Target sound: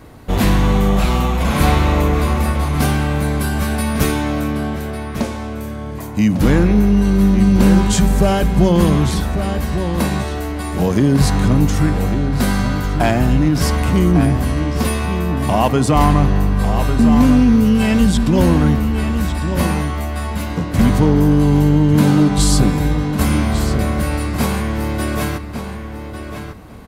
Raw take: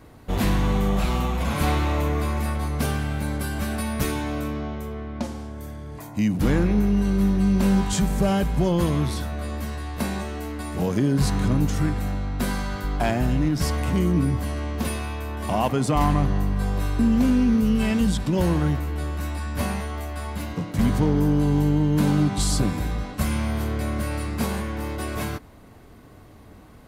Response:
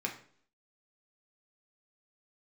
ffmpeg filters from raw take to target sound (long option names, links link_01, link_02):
-filter_complex "[0:a]asplit=2[link_01][link_02];[link_02]adelay=1150,lowpass=frequency=4500:poles=1,volume=-8dB,asplit=2[link_03][link_04];[link_04]adelay=1150,lowpass=frequency=4500:poles=1,volume=0.16,asplit=2[link_05][link_06];[link_06]adelay=1150,lowpass=frequency=4500:poles=1,volume=0.16[link_07];[link_01][link_03][link_05][link_07]amix=inputs=4:normalize=0,volume=7.5dB"